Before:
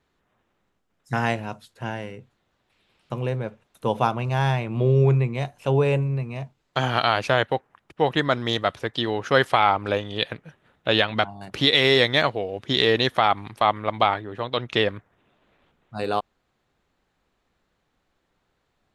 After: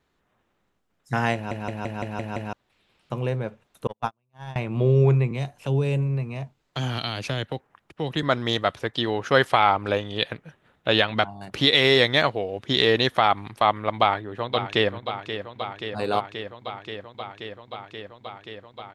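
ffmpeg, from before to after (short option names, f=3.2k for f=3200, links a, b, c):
-filter_complex "[0:a]asettb=1/sr,asplit=3[a][b][c];[a]atrim=end=3.874[d];[b]atrim=start=3.87:end=4.56,asetpts=PTS-STARTPTS,afade=t=in:d=0.004:c=qsin,afade=t=out:st=0.686:d=0.004:c=qsin,agate=range=-49dB:threshold=-19dB:ratio=16:release=100:detection=peak[e];[c]atrim=start=4.556[f];[d][e]acrossfade=d=0.004:c1=hsin:c2=qsin[g];[g][f]acrossfade=d=0.004:c1=qsin:c2=hsin,asettb=1/sr,asplit=3[h][i][j];[h]atrim=end=5.314[k];[i]atrim=start=5.31:end=8.23,asetpts=PTS-STARTPTS,afade=t=in:d=0.004:c=qsin,afade=t=out:st=2.916:d=0.004:c=qsin,acrossover=split=330|3000[l][m][n];[m]acompressor=threshold=-32dB:ratio=6:attack=3.2:release=140:knee=2.83:detection=peak[o];[l][o][n]amix=inputs=3:normalize=0[p];[j]atrim=start=8.226[q];[k][p]acrossfade=d=0.004:c1=hsin:c2=qsin[r];[r][q]acrossfade=d=0.004:c1=qsin:c2=hsin,asplit=2[s][t];[t]afade=t=in:st=13.96:d=0.01,afade=t=out:st=14.93:d=0.01,aecho=0:1:530|1060|1590|2120|2650|3180|3710|4240|4770|5300|5830|6360:0.316228|0.268794|0.228475|0.194203|0.165073|0.140312|0.119265|0.101375|0.0861691|0.0732437|0.0622572|0.0529186[u];[s][u]amix=inputs=2:normalize=0,asplit=8[v][w][x][y][z][aa][ab][ac];[v]atrim=end=1.512[ad];[w]atrim=start=1.338:end=1.512[ae];[x]atrim=start=1.338:end=1.512[af];[y]atrim=start=1.338:end=1.512[ag];[z]atrim=start=1.338:end=1.512[ah];[aa]atrim=start=1.338:end=1.512[ai];[ab]atrim=start=1.338:end=1.512[aj];[ac]atrim=start=2.528[ak];[ad][ae]acrossfade=d=0.004:c1=hsin:c2=hsin[al];[al][af]acrossfade=d=0.004:c1=hsin:c2=hsin[am];[am][ag]acrossfade=d=0.004:c1=hsin:c2=hsin[an];[an][ah]acrossfade=d=0.004:c1=hsin:c2=hsin[ao];[ao][ai]acrossfade=d=0.004:c1=hsin:c2=hsin[ap];[ap][aj]acrossfade=d=0.004:c1=hsin:c2=hsin[aq];[aq][ak]acrossfade=d=0.004:c1=hsin:c2=hsin"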